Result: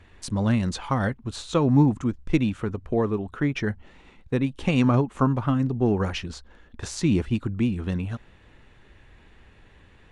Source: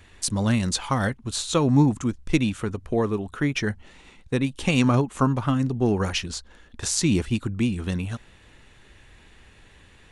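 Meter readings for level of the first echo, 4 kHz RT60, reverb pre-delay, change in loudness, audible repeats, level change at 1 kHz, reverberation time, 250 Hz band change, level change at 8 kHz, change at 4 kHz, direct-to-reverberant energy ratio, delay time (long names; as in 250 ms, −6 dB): no echo audible, no reverb audible, no reverb audible, −0.5 dB, no echo audible, −1.0 dB, no reverb audible, 0.0 dB, −11.5 dB, −7.0 dB, no reverb audible, no echo audible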